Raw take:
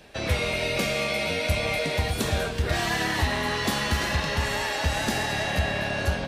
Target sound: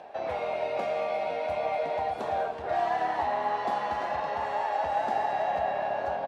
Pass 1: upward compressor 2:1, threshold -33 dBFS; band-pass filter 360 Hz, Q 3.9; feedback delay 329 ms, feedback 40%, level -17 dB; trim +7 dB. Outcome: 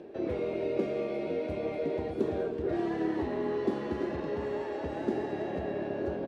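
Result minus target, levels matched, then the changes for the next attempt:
1 kHz band -11.5 dB
change: band-pass filter 760 Hz, Q 3.9

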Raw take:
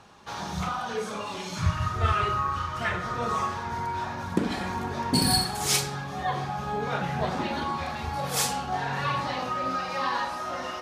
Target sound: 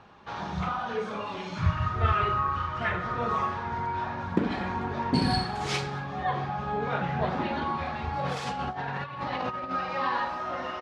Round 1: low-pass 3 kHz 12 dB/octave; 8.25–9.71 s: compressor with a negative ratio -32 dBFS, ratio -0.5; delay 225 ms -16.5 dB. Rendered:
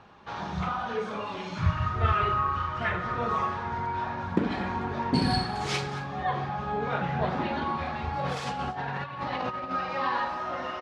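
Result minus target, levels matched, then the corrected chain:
echo-to-direct +9.5 dB
low-pass 3 kHz 12 dB/octave; 8.25–9.71 s: compressor with a negative ratio -32 dBFS, ratio -0.5; delay 225 ms -26 dB

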